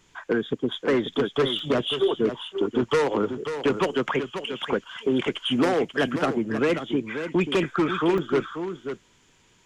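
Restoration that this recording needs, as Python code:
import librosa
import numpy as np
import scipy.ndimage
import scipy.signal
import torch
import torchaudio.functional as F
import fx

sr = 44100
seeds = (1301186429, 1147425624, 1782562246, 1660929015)

y = fx.fix_declip(x, sr, threshold_db=-14.0)
y = fx.fix_interpolate(y, sr, at_s=(1.59, 5.93, 8.18), length_ms=2.9)
y = fx.fix_echo_inverse(y, sr, delay_ms=537, level_db=-9.0)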